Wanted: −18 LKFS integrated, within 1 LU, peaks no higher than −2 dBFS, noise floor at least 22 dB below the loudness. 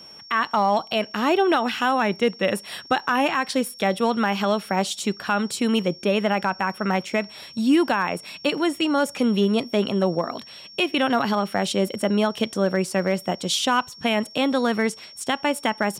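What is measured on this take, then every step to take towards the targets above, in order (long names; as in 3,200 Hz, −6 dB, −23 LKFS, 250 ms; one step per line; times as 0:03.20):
share of clipped samples 0.2%; peaks flattened at −11.5 dBFS; interfering tone 5,500 Hz; level of the tone −42 dBFS; integrated loudness −23.0 LKFS; sample peak −11.5 dBFS; target loudness −18.0 LKFS
→ clipped peaks rebuilt −11.5 dBFS
notch filter 5,500 Hz, Q 30
level +5 dB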